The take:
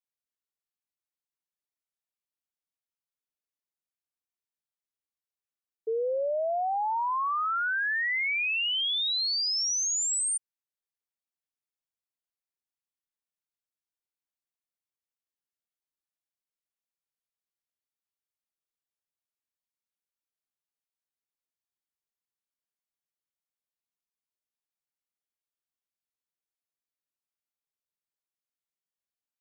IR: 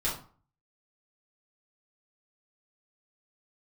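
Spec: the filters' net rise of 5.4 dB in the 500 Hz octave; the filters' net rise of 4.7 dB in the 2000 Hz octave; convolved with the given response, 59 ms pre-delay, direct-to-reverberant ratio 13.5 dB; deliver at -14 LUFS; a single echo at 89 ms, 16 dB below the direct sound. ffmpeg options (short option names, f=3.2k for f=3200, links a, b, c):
-filter_complex "[0:a]equalizer=f=500:t=o:g=6,equalizer=f=2k:t=o:g=5.5,aecho=1:1:89:0.158,asplit=2[a][b];[1:a]atrim=start_sample=2205,adelay=59[c];[b][c]afir=irnorm=-1:irlink=0,volume=-20.5dB[d];[a][d]amix=inputs=2:normalize=0,volume=9.5dB"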